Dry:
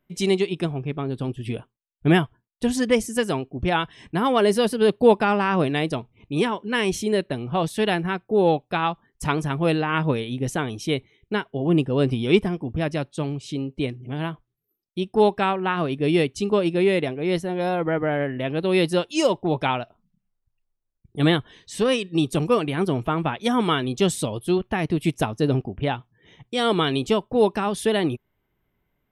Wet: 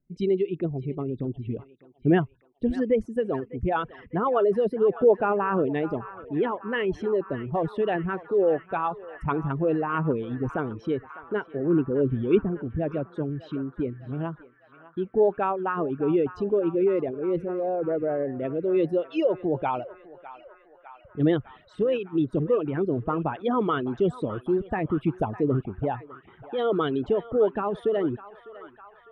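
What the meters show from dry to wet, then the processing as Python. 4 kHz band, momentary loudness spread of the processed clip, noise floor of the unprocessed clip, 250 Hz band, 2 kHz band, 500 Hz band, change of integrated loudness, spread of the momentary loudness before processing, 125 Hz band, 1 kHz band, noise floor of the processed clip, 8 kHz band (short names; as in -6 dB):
under -15 dB, 10 LU, -77 dBFS, -3.5 dB, -8.5 dB, -1.5 dB, -3.0 dB, 9 LU, -5.0 dB, -4.0 dB, -57 dBFS, under -30 dB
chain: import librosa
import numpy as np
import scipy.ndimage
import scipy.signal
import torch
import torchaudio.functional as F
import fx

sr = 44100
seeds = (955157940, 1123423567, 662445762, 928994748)

p1 = fx.envelope_sharpen(x, sr, power=2.0)
p2 = fx.air_absorb(p1, sr, metres=400.0)
p3 = p2 + fx.echo_banded(p2, sr, ms=603, feedback_pct=82, hz=1500.0, wet_db=-14, dry=0)
y = F.gain(torch.from_numpy(p3), -2.0).numpy()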